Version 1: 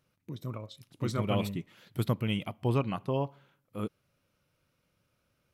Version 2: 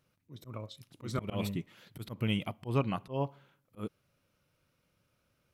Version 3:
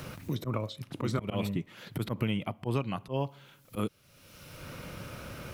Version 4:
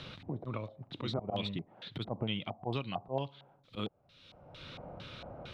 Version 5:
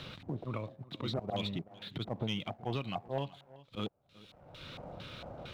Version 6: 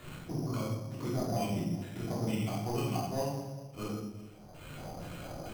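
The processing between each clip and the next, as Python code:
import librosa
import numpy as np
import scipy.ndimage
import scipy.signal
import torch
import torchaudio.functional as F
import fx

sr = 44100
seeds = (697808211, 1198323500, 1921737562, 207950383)

y1 = fx.auto_swell(x, sr, attack_ms=139.0)
y2 = fx.band_squash(y1, sr, depth_pct=100)
y2 = y2 * 10.0 ** (3.0 / 20.0)
y3 = fx.filter_lfo_lowpass(y2, sr, shape='square', hz=2.2, low_hz=750.0, high_hz=3700.0, q=6.0)
y3 = y3 * 10.0 ** (-6.5 / 20.0)
y4 = fx.leveller(y3, sr, passes=1)
y4 = y4 + 10.0 ** (-20.0 / 20.0) * np.pad(y4, (int(378 * sr / 1000.0), 0))[:len(y4)]
y4 = y4 * 10.0 ** (-3.0 / 20.0)
y5 = fx.room_shoebox(y4, sr, seeds[0], volume_m3=400.0, walls='mixed', distance_m=3.2)
y5 = np.repeat(scipy.signal.resample_poly(y5, 1, 8), 8)[:len(y5)]
y5 = y5 * 10.0 ** (-5.5 / 20.0)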